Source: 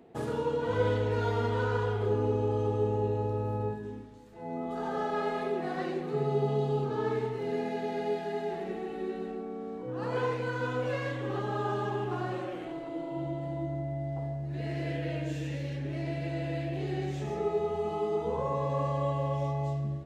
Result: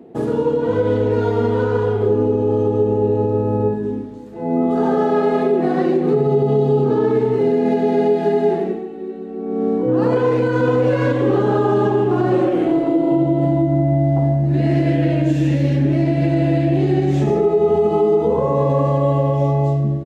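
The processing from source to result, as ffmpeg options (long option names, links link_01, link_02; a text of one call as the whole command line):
ffmpeg -i in.wav -filter_complex "[0:a]asplit=2[link_01][link_02];[link_02]afade=type=in:start_time=10.21:duration=0.01,afade=type=out:start_time=10.66:duration=0.01,aecho=0:1:460|920|1380|1840:0.668344|0.200503|0.060151|0.0180453[link_03];[link_01][link_03]amix=inputs=2:normalize=0,asettb=1/sr,asplit=3[link_04][link_05][link_06];[link_04]atrim=end=13.454[link_07];[link_05]atrim=start=13.45:end=17.27,asetpts=PTS-STARTPTS,afade=type=in:duration=0.004:curve=qsin,afade=type=out:start_time=3.816:duration=0.004:curve=qsin,equalizer=frequency=450:width_type=o:width=0.28:gain=-11.5[link_08];[link_06]atrim=start=17.266[link_09];[link_07][link_08]acrossfade=duration=0.004:curve1=hsin:curve2=qsin[link_10];[link_10][link_09]acrossfade=duration=0.004:curve1=qsin:curve2=hsin,asplit=3[link_11][link_12][link_13];[link_11]atrim=end=8.96,asetpts=PTS-STARTPTS,afade=type=out:start_time=8.53:duration=0.43:curve=qua:silence=0.188365[link_14];[link_12]atrim=start=8.96:end=9.22,asetpts=PTS-STARTPTS,volume=-14.5dB[link_15];[link_13]atrim=start=9.22,asetpts=PTS-STARTPTS,afade=type=in:duration=0.43:curve=qua:silence=0.188365[link_16];[link_14][link_15][link_16]concat=n=3:v=0:a=1,equalizer=frequency=290:width=0.51:gain=13,dynaudnorm=framelen=860:gausssize=9:maxgain=11.5dB,alimiter=limit=-11dB:level=0:latency=1:release=119,volume=3dB" out.wav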